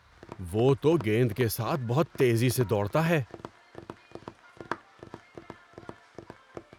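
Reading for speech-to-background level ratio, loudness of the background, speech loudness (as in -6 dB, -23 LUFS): 19.0 dB, -45.5 LUFS, -26.5 LUFS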